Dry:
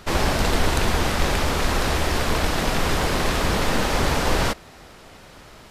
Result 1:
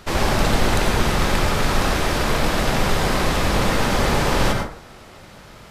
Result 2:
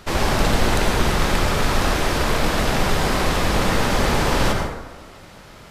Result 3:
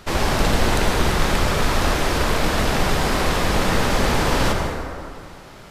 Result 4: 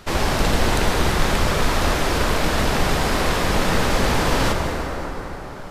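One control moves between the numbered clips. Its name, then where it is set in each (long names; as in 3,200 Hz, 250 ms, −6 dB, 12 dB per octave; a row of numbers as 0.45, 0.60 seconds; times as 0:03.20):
dense smooth reverb, RT60: 0.51, 1.1, 2.3, 4.9 seconds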